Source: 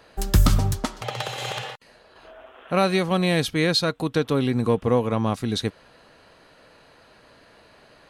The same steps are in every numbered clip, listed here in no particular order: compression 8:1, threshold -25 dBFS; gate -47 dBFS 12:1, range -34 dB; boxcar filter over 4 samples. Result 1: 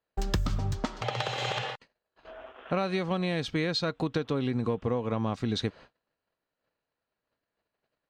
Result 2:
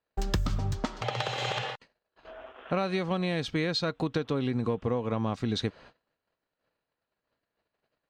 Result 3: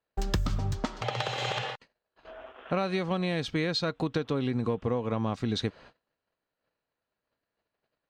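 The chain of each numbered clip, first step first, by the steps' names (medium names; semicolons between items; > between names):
boxcar filter > compression > gate; gate > boxcar filter > compression; boxcar filter > gate > compression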